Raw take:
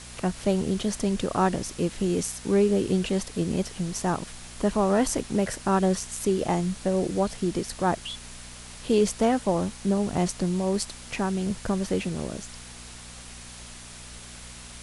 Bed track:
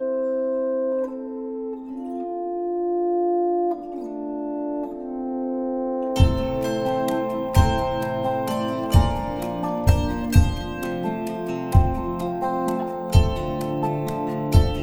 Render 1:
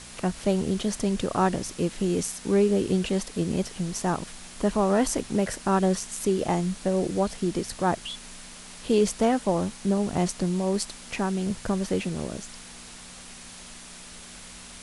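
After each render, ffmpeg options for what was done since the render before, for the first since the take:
-af "bandreject=f=60:t=h:w=4,bandreject=f=120:t=h:w=4"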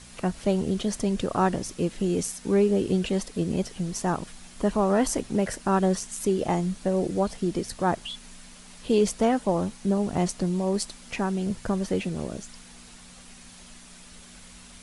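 -af "afftdn=nr=6:nf=-44"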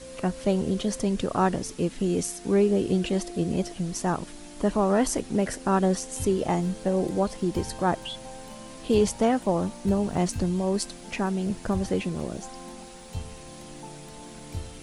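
-filter_complex "[1:a]volume=-19dB[a];[0:a][a]amix=inputs=2:normalize=0"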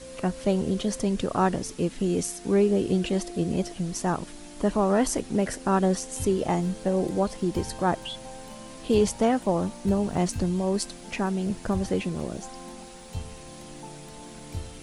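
-af anull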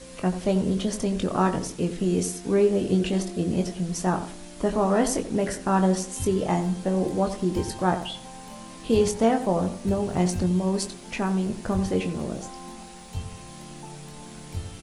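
-filter_complex "[0:a]asplit=2[a][b];[b]adelay=22,volume=-7dB[c];[a][c]amix=inputs=2:normalize=0,asplit=2[d][e];[e]adelay=89,lowpass=f=1.5k:p=1,volume=-10dB,asplit=2[f][g];[g]adelay=89,lowpass=f=1.5k:p=1,volume=0.34,asplit=2[h][i];[i]adelay=89,lowpass=f=1.5k:p=1,volume=0.34,asplit=2[j][k];[k]adelay=89,lowpass=f=1.5k:p=1,volume=0.34[l];[d][f][h][j][l]amix=inputs=5:normalize=0"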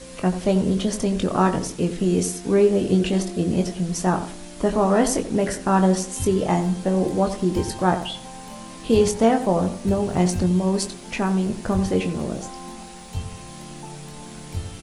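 -af "volume=3.5dB"

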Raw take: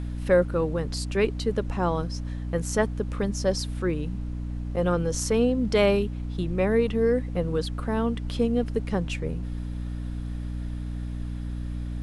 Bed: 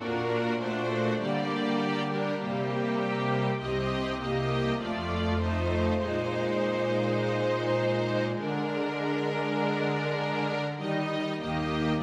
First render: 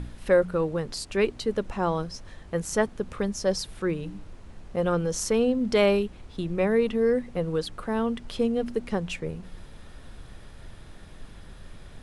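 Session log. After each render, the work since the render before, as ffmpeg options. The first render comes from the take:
-af "bandreject=f=60:t=h:w=4,bandreject=f=120:t=h:w=4,bandreject=f=180:t=h:w=4,bandreject=f=240:t=h:w=4,bandreject=f=300:t=h:w=4"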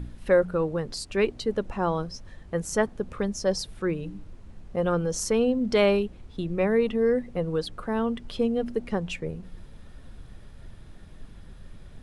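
-af "afftdn=nr=6:nf=-46"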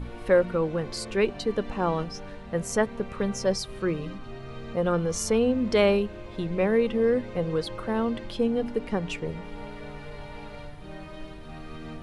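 -filter_complex "[1:a]volume=-13dB[a];[0:a][a]amix=inputs=2:normalize=0"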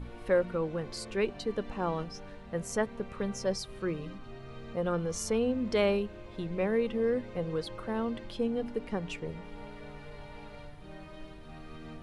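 -af "volume=-6dB"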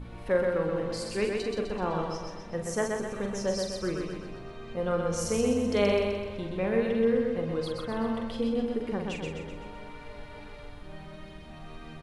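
-filter_complex "[0:a]asplit=2[a][b];[b]adelay=44,volume=-6.5dB[c];[a][c]amix=inputs=2:normalize=0,aecho=1:1:127|254|381|508|635|762|889:0.668|0.354|0.188|0.0995|0.0527|0.0279|0.0148"

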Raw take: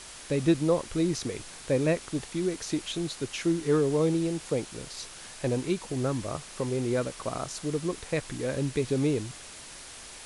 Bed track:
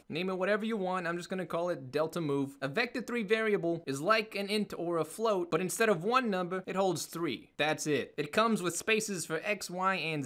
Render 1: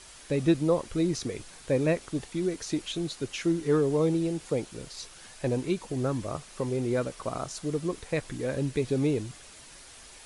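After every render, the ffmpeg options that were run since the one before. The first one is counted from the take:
-af "afftdn=nr=6:nf=-45"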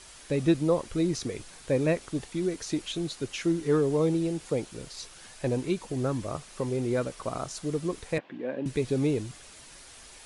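-filter_complex "[0:a]asettb=1/sr,asplit=3[a][b][c];[a]atrim=end=8.184[d];[b]atrim=start=8.18:end=8.66,asetpts=PTS-STARTPTS,afade=t=in:d=0.004:c=qsin,afade=t=out:st=0.476:d=0.004:c=qsin,highpass=f=210:w=0.5412,highpass=f=210:w=1.3066,equalizer=f=430:t=q:w=4:g=-5,equalizer=f=1.3k:t=q:w=4:g=-8,equalizer=f=2.1k:t=q:w=4:g=-5,lowpass=f=2.7k:w=0.5412,lowpass=f=2.7k:w=1.3066[e];[c]atrim=start=8.656[f];[d][e]acrossfade=d=0.004:c1=hsin:c2=qsin[g];[g][f]acrossfade=d=0.004:c1=qsin:c2=hsin"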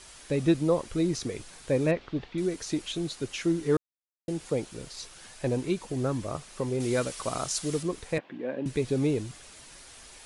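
-filter_complex "[0:a]asettb=1/sr,asplit=3[a][b][c];[a]atrim=end=1.914[d];[b]atrim=start=1.91:end=2.38,asetpts=PTS-STARTPTS,afade=t=in:d=0.004:c=qsin,afade=t=out:st=0.466:d=0.004:c=qsin,lowpass=f=4k:w=0.5412,lowpass=f=4k:w=1.3066[e];[c]atrim=start=2.376[f];[d][e]acrossfade=d=0.004:c1=hsin:c2=qsin[g];[g][f]acrossfade=d=0.004:c1=qsin:c2=hsin,asettb=1/sr,asplit=3[h][i][j];[h]atrim=end=6.804[k];[i]atrim=start=6.8:end=7.83,asetpts=PTS-STARTPTS,afade=t=in:d=0.004:c=qsin,afade=t=out:st=1.026:d=0.004:c=qsin,highshelf=f=2.1k:g=10[l];[j]atrim=start=7.826[m];[k][l]acrossfade=d=0.004:c1=hsin:c2=qsin[n];[n][m]acrossfade=d=0.004:c1=qsin:c2=hsin,asplit=3[o][p][q];[o]atrim=end=3.77,asetpts=PTS-STARTPTS,afade=t=out:st=3.766:d=0.004:c=hsin[r];[p]atrim=start=3.77:end=4.28,asetpts=PTS-STARTPTS,volume=0[s];[q]atrim=start=4.28,asetpts=PTS-STARTPTS,afade=t=in:d=0.004:c=hsin[t];[r][s][t]concat=n=3:v=0:a=1"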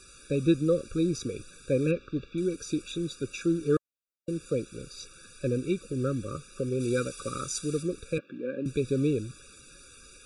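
-af "afftfilt=real='re*eq(mod(floor(b*sr/1024/560),2),0)':imag='im*eq(mod(floor(b*sr/1024/560),2),0)':win_size=1024:overlap=0.75"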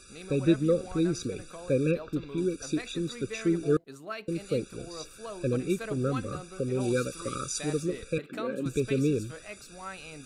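-filter_complex "[1:a]volume=-11dB[a];[0:a][a]amix=inputs=2:normalize=0"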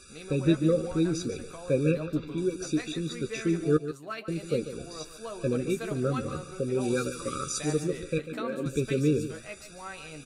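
-filter_complex "[0:a]asplit=2[a][b];[b]adelay=13,volume=-8dB[c];[a][c]amix=inputs=2:normalize=0,aecho=1:1:145:0.266"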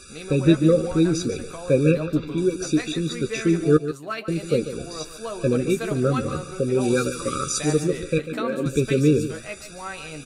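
-af "volume=7dB"

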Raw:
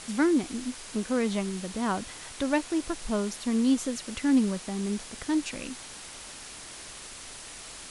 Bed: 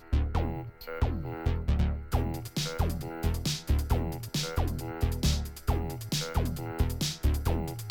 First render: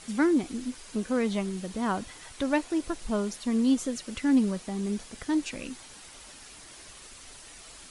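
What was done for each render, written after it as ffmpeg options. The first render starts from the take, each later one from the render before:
-af "afftdn=nr=7:nf=-44"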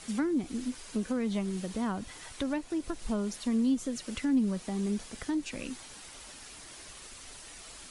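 -filter_complex "[0:a]acrossover=split=240[a][b];[b]acompressor=threshold=-34dB:ratio=4[c];[a][c]amix=inputs=2:normalize=0"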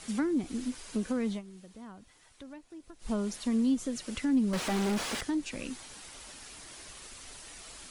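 -filter_complex "[0:a]asettb=1/sr,asplit=3[a][b][c];[a]atrim=end=4.534[d];[b]atrim=start=4.53:end=5.21,asetpts=PTS-STARTPTS,afade=t=in:d=0.004:c=qsin,afade=t=out:st=0.676:d=0.004:c=qsin,asplit=2[e][f];[f]highpass=f=720:p=1,volume=36dB,asoftclip=type=tanh:threshold=-23dB[g];[e][g]amix=inputs=2:normalize=0,lowpass=f=2.5k:p=1,volume=-6dB[h];[c]atrim=start=5.206[i];[d][h]acrossfade=d=0.004:c1=hsin:c2=qsin[j];[j][i]acrossfade=d=0.004:c1=qsin:c2=hsin,asplit=3[k][l][m];[k]atrim=end=1.42,asetpts=PTS-STARTPTS,afade=t=out:st=1.29:d=0.13:silence=0.177828[n];[l]atrim=start=1.42:end=2.99,asetpts=PTS-STARTPTS,volume=-15dB[o];[m]atrim=start=2.99,asetpts=PTS-STARTPTS,afade=t=in:d=0.13:silence=0.177828[p];[n][o][p]concat=n=3:v=0:a=1"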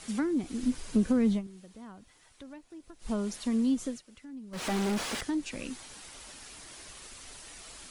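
-filter_complex "[0:a]asettb=1/sr,asplit=3[a][b][c];[a]atrim=end=0.634[d];[b]atrim=start=0.63:end=1.47,asetpts=PTS-STARTPTS,afade=t=in:d=0.004:c=qsin,afade=t=out:st=0.836:d=0.004:c=qsin,lowshelf=f=320:g=10.5[e];[c]atrim=start=1.466[f];[d][e]acrossfade=d=0.004:c1=hsin:c2=qsin[g];[g][f]acrossfade=d=0.004:c1=qsin:c2=hsin,asplit=3[h][i][j];[h]atrim=end=4.02,asetpts=PTS-STARTPTS,afade=t=out:st=3.88:d=0.14:silence=0.133352[k];[i]atrim=start=4.02:end=4.51,asetpts=PTS-STARTPTS,volume=-17.5dB[l];[j]atrim=start=4.51,asetpts=PTS-STARTPTS,afade=t=in:d=0.14:silence=0.133352[m];[k][l][m]concat=n=3:v=0:a=1"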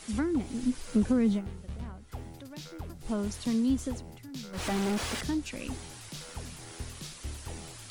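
-filter_complex "[1:a]volume=-13dB[a];[0:a][a]amix=inputs=2:normalize=0"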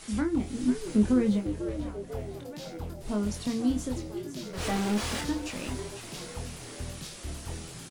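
-filter_complex "[0:a]asplit=2[a][b];[b]adelay=24,volume=-5dB[c];[a][c]amix=inputs=2:normalize=0,asplit=6[d][e][f][g][h][i];[e]adelay=496,afreqshift=95,volume=-11dB[j];[f]adelay=992,afreqshift=190,volume=-16.8dB[k];[g]adelay=1488,afreqshift=285,volume=-22.7dB[l];[h]adelay=1984,afreqshift=380,volume=-28.5dB[m];[i]adelay=2480,afreqshift=475,volume=-34.4dB[n];[d][j][k][l][m][n]amix=inputs=6:normalize=0"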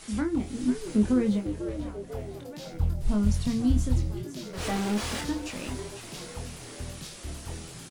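-filter_complex "[0:a]asplit=3[a][b][c];[a]afade=t=out:st=2.72:d=0.02[d];[b]asubboost=boost=8:cutoff=140,afade=t=in:st=2.72:d=0.02,afade=t=out:st=4.23:d=0.02[e];[c]afade=t=in:st=4.23:d=0.02[f];[d][e][f]amix=inputs=3:normalize=0"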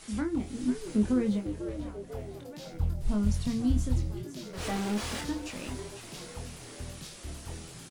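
-af "volume=-3dB"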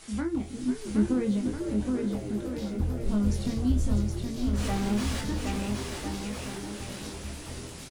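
-filter_complex "[0:a]asplit=2[a][b];[b]adelay=15,volume=-10.5dB[c];[a][c]amix=inputs=2:normalize=0,aecho=1:1:770|1348|1781|2105|2349:0.631|0.398|0.251|0.158|0.1"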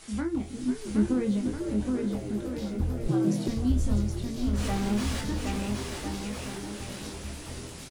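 -filter_complex "[0:a]asettb=1/sr,asplit=3[a][b][c];[a]atrim=end=3.084[d];[b]atrim=start=3.08:end=3.48,asetpts=PTS-STARTPTS,afade=t=in:d=0.004:c=qsin,afade=t=out:st=0.396:d=0.004:c=qsin,afreqshift=120[e];[c]atrim=start=3.476[f];[d][e]acrossfade=d=0.004:c1=hsin:c2=qsin[g];[g][f]acrossfade=d=0.004:c1=qsin:c2=hsin"

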